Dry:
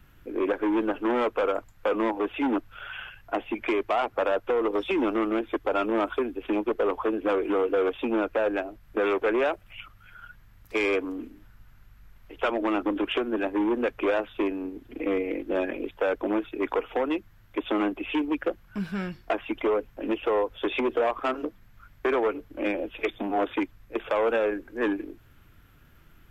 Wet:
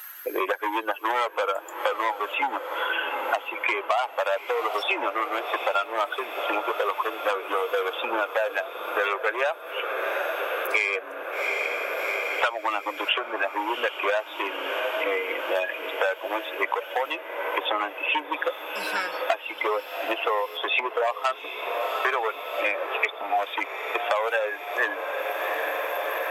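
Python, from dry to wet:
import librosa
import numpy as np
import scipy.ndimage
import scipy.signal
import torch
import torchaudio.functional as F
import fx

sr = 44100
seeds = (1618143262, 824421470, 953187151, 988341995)

y = fx.bin_expand(x, sr, power=1.5)
y = scipy.signal.sosfilt(scipy.signal.butter(4, 610.0, 'highpass', fs=sr, output='sos'), y)
y = fx.high_shelf(y, sr, hz=3800.0, db=11.0)
y = fx.echo_diffused(y, sr, ms=764, feedback_pct=72, wet_db=-14.0)
y = fx.band_squash(y, sr, depth_pct=100)
y = y * librosa.db_to_amplitude(8.0)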